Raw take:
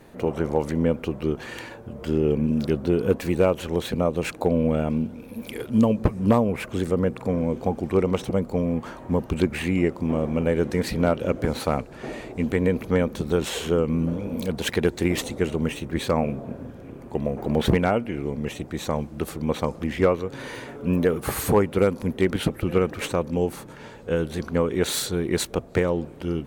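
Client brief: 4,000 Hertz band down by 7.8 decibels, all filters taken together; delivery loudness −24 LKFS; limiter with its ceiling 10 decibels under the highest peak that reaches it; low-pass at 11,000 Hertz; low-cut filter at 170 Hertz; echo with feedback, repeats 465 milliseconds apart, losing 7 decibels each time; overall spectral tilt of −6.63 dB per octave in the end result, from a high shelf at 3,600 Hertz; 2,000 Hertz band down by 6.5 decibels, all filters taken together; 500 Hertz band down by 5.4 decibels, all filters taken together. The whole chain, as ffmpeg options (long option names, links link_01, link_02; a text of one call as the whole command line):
ffmpeg -i in.wav -af "highpass=170,lowpass=11000,equalizer=frequency=500:width_type=o:gain=-6,equalizer=frequency=2000:width_type=o:gain=-5.5,highshelf=frequency=3600:gain=-4.5,equalizer=frequency=4000:width_type=o:gain=-5,alimiter=limit=-18.5dB:level=0:latency=1,aecho=1:1:465|930|1395|1860|2325:0.447|0.201|0.0905|0.0407|0.0183,volume=6.5dB" out.wav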